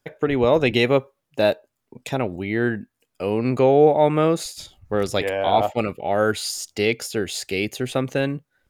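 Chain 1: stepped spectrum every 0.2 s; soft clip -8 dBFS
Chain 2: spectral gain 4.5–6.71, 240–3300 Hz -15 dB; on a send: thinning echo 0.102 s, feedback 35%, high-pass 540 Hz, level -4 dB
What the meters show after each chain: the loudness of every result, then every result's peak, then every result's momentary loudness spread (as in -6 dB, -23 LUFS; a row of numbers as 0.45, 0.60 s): -24.5, -21.5 LUFS; -9.5, -3.0 dBFS; 12, 14 LU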